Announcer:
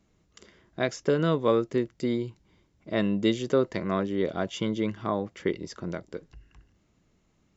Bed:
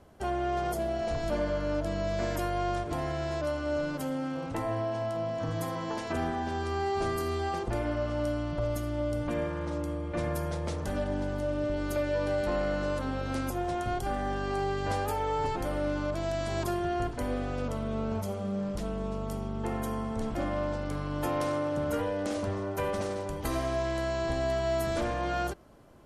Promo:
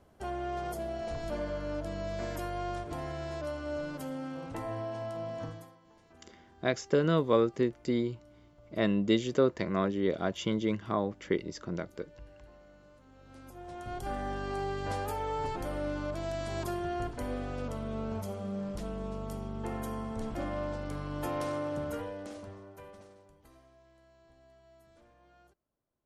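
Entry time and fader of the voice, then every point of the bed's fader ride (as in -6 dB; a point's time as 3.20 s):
5.85 s, -2.0 dB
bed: 5.44 s -5.5 dB
5.80 s -27.5 dB
13.03 s -27.5 dB
14.10 s -4 dB
21.76 s -4 dB
23.76 s -31.5 dB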